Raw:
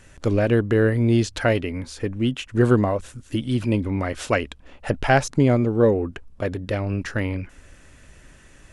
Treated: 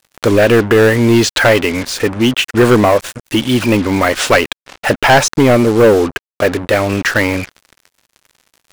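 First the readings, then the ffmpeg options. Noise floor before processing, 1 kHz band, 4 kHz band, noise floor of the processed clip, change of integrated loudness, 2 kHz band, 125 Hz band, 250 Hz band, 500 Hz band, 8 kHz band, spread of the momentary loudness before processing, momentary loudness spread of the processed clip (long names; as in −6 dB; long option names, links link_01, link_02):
−50 dBFS, +12.0 dB, +17.0 dB, below −85 dBFS, +10.0 dB, +14.0 dB, +4.5 dB, +8.5 dB, +11.0 dB, +16.5 dB, 12 LU, 8 LU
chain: -filter_complex "[0:a]asplit=2[link_01][link_02];[link_02]highpass=frequency=720:poles=1,volume=20dB,asoftclip=type=tanh:threshold=-2.5dB[link_03];[link_01][link_03]amix=inputs=2:normalize=0,lowpass=frequency=5100:poles=1,volume=-6dB,acontrast=53,acrusher=bits=3:mix=0:aa=0.5"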